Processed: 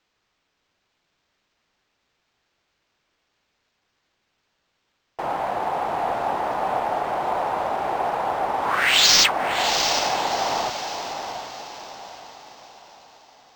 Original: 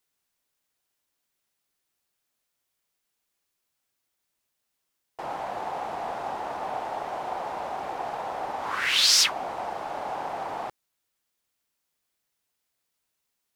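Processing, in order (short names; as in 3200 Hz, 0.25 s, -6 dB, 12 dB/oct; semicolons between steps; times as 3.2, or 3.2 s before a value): diffused feedback echo 0.725 s, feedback 43%, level -7 dB; decimation joined by straight lines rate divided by 4×; gain +7.5 dB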